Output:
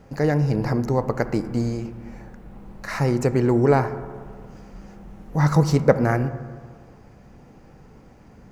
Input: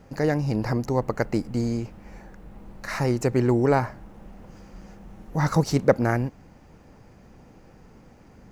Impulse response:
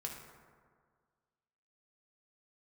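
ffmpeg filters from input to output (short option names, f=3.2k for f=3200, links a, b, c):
-filter_complex "[0:a]asplit=2[a][b];[1:a]atrim=start_sample=2205,highshelf=f=3.6k:g=-10.5[c];[b][c]afir=irnorm=-1:irlink=0,volume=-2.5dB[d];[a][d]amix=inputs=2:normalize=0,volume=-1.5dB"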